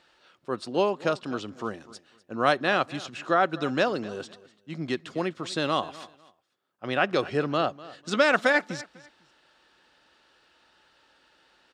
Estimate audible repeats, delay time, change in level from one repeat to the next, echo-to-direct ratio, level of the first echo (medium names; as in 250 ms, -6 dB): 2, 249 ms, -12.5 dB, -19.0 dB, -19.0 dB